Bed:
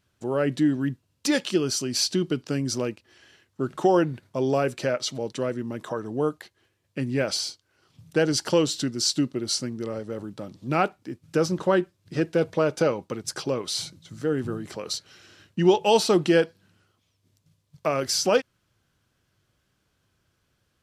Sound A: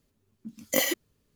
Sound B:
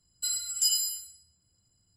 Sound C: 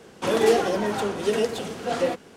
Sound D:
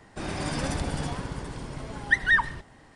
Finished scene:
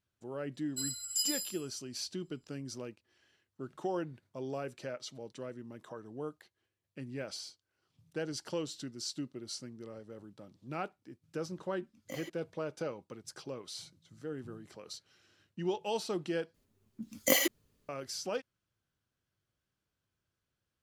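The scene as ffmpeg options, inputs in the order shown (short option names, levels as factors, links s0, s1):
-filter_complex "[1:a]asplit=2[s0][s1];[0:a]volume=0.168[s2];[s0]aemphasis=mode=reproduction:type=50kf[s3];[s2]asplit=2[s4][s5];[s4]atrim=end=16.544[s6];[s1]atrim=end=1.35,asetpts=PTS-STARTPTS,volume=0.841[s7];[s5]atrim=start=17.886[s8];[2:a]atrim=end=1.96,asetpts=PTS-STARTPTS,volume=0.447,afade=t=in:d=0.004:c=hsin,afade=t=out:st=1.956:d=0.004:c=hsin,adelay=540[s9];[s3]atrim=end=1.35,asetpts=PTS-STARTPTS,volume=0.141,afade=t=in:d=0.004:c=hsin,afade=t=out:st=1.346:d=0.004:c=hsin,adelay=11360[s10];[s6][s7]acrossfade=d=0.004:c1=hsin:c2=hsin[s11];[s11][s8]acrossfade=d=0.004:c1=hsin:c2=hsin[s12];[s12][s9][s10]amix=inputs=3:normalize=0"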